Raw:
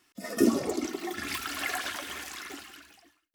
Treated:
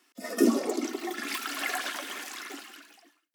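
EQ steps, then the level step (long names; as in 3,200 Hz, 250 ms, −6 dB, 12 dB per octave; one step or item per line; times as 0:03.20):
Chebyshev high-pass filter 230 Hz, order 4
+1.5 dB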